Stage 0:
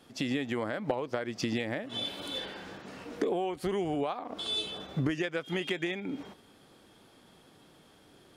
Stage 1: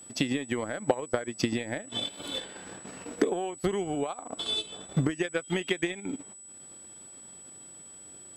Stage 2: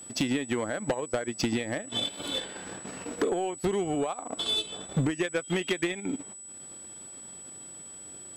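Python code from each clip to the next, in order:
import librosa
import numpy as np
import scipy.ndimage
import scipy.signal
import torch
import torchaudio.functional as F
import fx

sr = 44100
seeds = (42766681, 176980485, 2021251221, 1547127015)

y1 = fx.transient(x, sr, attack_db=7, sustain_db=-11)
y1 = y1 + 10.0 ** (-46.0 / 20.0) * np.sin(2.0 * np.pi * 7900.0 * np.arange(len(y1)) / sr)
y2 = 10.0 ** (-23.5 / 20.0) * np.tanh(y1 / 10.0 ** (-23.5 / 20.0))
y2 = y2 * 10.0 ** (3.5 / 20.0)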